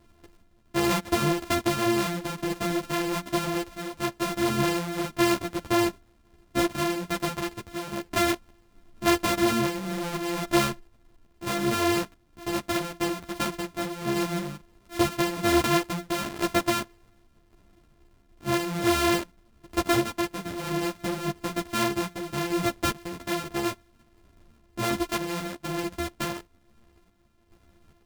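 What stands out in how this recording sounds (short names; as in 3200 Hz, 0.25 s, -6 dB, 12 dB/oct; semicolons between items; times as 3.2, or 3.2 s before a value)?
a buzz of ramps at a fixed pitch in blocks of 128 samples; random-step tremolo 2.4 Hz; a shimmering, thickened sound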